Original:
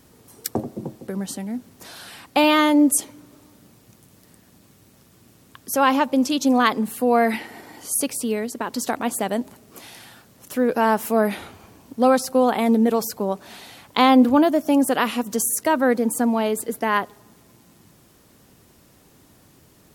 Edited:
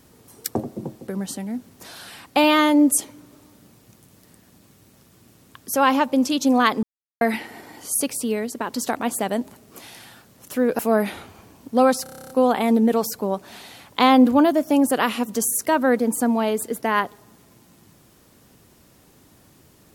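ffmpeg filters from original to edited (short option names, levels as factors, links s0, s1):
-filter_complex "[0:a]asplit=13[s0][s1][s2][s3][s4][s5][s6][s7][s8][s9][s10][s11][s12];[s0]atrim=end=6.83,asetpts=PTS-STARTPTS,afade=t=out:st=6.826:d=0.004:c=hsin[s13];[s1]atrim=start=6.83:end=7.21,asetpts=PTS-STARTPTS,volume=0[s14];[s2]atrim=start=7.21:end=10.792,asetpts=PTS-STARTPTS,afade=t=in:d=0.004:c=hsin[s15];[s3]atrim=start=11.038:end=12.312[s16];[s4]atrim=start=12.278:end=12.312[s17];[s5]atrim=start=12.278:end=12.312[s18];[s6]atrim=start=12.278:end=12.312[s19];[s7]atrim=start=12.278:end=12.312[s20];[s8]atrim=start=12.278:end=12.312[s21];[s9]atrim=start=12.278:end=12.312[s22];[s10]atrim=start=12.278:end=12.312[s23];[s11]atrim=start=12.278:end=12.312[s24];[s12]atrim=start=12.278[s25];[s13][s14][s15]concat=n=3:v=0:a=1[s26];[s26][s16]acrossfade=d=0.004:c1=hsin:c2=hsin[s27];[s27][s17]acrossfade=d=0.004:c1=hsin:c2=hsin[s28];[s28][s18]acrossfade=d=0.004:c1=hsin:c2=hsin[s29];[s29][s19]acrossfade=d=0.004:c1=hsin:c2=hsin[s30];[s30][s20]acrossfade=d=0.004:c1=hsin:c2=hsin[s31];[s31][s21]acrossfade=d=0.004:c1=hsin:c2=hsin[s32];[s32][s22]acrossfade=d=0.004:c1=hsin:c2=hsin[s33];[s33][s23]acrossfade=d=0.004:c1=hsin:c2=hsin[s34];[s34][s24]acrossfade=d=0.004:c1=hsin:c2=hsin[s35];[s35][s25]acrossfade=d=0.004:c1=hsin:c2=hsin"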